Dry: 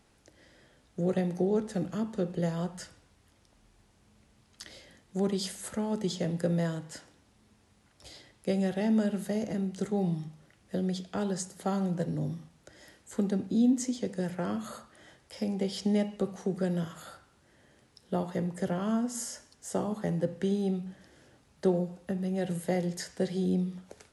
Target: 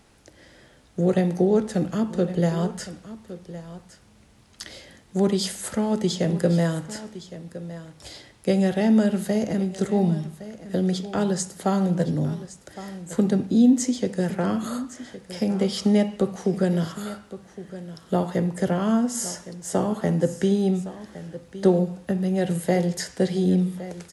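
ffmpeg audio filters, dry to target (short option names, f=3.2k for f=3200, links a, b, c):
-af "aecho=1:1:1113:0.178,volume=8dB"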